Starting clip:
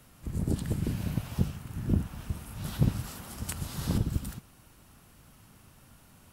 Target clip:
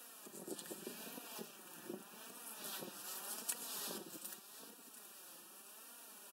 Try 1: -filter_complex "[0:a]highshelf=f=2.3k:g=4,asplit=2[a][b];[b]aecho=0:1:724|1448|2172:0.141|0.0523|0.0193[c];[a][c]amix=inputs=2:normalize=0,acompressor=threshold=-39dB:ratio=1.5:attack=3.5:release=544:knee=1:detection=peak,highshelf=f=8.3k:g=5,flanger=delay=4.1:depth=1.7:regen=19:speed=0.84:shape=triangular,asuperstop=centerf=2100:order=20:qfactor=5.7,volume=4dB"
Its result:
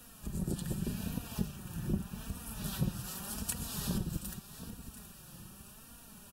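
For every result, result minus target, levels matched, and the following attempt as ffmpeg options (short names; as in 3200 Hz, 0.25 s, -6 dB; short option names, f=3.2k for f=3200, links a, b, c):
250 Hz band +7.0 dB; compressor: peak gain reduction -4 dB
-filter_complex "[0:a]highshelf=f=2.3k:g=4,asplit=2[a][b];[b]aecho=0:1:724|1448|2172:0.141|0.0523|0.0193[c];[a][c]amix=inputs=2:normalize=0,acompressor=threshold=-39dB:ratio=1.5:attack=3.5:release=544:knee=1:detection=peak,highpass=f=320:w=0.5412,highpass=f=320:w=1.3066,highshelf=f=8.3k:g=5,flanger=delay=4.1:depth=1.7:regen=19:speed=0.84:shape=triangular,asuperstop=centerf=2100:order=20:qfactor=5.7,volume=4dB"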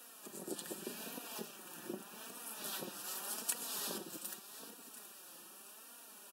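compressor: peak gain reduction -4 dB
-filter_complex "[0:a]highshelf=f=2.3k:g=4,asplit=2[a][b];[b]aecho=0:1:724|1448|2172:0.141|0.0523|0.0193[c];[a][c]amix=inputs=2:normalize=0,acompressor=threshold=-51dB:ratio=1.5:attack=3.5:release=544:knee=1:detection=peak,highpass=f=320:w=0.5412,highpass=f=320:w=1.3066,highshelf=f=8.3k:g=5,flanger=delay=4.1:depth=1.7:regen=19:speed=0.84:shape=triangular,asuperstop=centerf=2100:order=20:qfactor=5.7,volume=4dB"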